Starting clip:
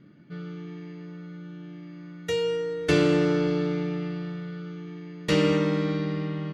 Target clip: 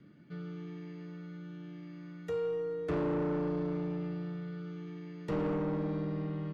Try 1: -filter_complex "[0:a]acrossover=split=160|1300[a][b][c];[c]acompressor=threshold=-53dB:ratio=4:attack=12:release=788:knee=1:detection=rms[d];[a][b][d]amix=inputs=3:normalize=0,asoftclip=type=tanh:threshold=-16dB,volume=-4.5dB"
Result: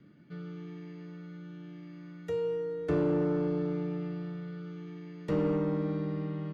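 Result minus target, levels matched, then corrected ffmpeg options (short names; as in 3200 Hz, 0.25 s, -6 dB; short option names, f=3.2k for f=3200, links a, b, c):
soft clip: distortion -9 dB
-filter_complex "[0:a]acrossover=split=160|1300[a][b][c];[c]acompressor=threshold=-53dB:ratio=4:attack=12:release=788:knee=1:detection=rms[d];[a][b][d]amix=inputs=3:normalize=0,asoftclip=type=tanh:threshold=-24dB,volume=-4.5dB"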